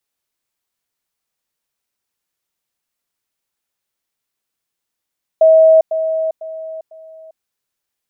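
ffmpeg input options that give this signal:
ffmpeg -f lavfi -i "aevalsrc='pow(10,(-5-10*floor(t/0.5))/20)*sin(2*PI*641*t)*clip(min(mod(t,0.5),0.4-mod(t,0.5))/0.005,0,1)':duration=2:sample_rate=44100" out.wav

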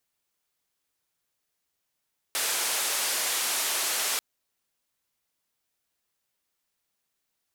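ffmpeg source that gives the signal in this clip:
ffmpeg -f lavfi -i "anoisesrc=color=white:duration=1.84:sample_rate=44100:seed=1,highpass=frequency=460,lowpass=frequency=12000,volume=-20.4dB" out.wav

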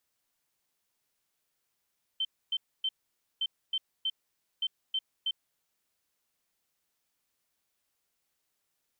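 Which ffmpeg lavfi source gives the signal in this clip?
ffmpeg -f lavfi -i "aevalsrc='0.0447*sin(2*PI*3100*t)*clip(min(mod(mod(t,1.21),0.32),0.05-mod(mod(t,1.21),0.32))/0.005,0,1)*lt(mod(t,1.21),0.96)':duration=3.63:sample_rate=44100" out.wav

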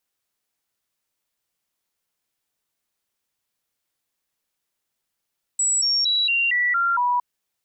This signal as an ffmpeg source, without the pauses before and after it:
ffmpeg -f lavfi -i "aevalsrc='0.133*clip(min(mod(t,0.23),0.23-mod(t,0.23))/0.005,0,1)*sin(2*PI*7820*pow(2,-floor(t/0.23)/2)*mod(t,0.23))':duration=1.61:sample_rate=44100" out.wav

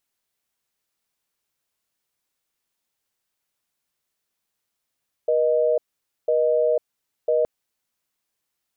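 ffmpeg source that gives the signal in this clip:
ffmpeg -f lavfi -i "aevalsrc='0.106*(sin(2*PI*480*t)+sin(2*PI*620*t))*clip(min(mod(t,1),0.5-mod(t,1))/0.005,0,1)':duration=2.17:sample_rate=44100" out.wav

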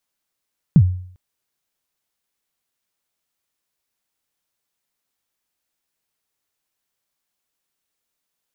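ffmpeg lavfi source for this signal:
ffmpeg -f lavfi -i "aevalsrc='0.631*pow(10,-3*t/0.57)*sin(2*PI*(190*0.062/log(91/190)*(exp(log(91/190)*min(t,0.062)/0.062)-1)+91*max(t-0.062,0)))':duration=0.4:sample_rate=44100" out.wav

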